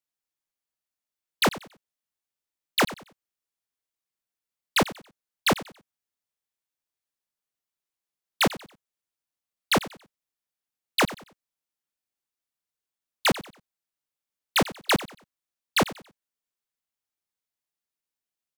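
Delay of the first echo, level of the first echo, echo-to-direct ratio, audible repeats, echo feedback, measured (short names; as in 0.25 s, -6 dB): 93 ms, -16.5 dB, -16.0 dB, 2, 30%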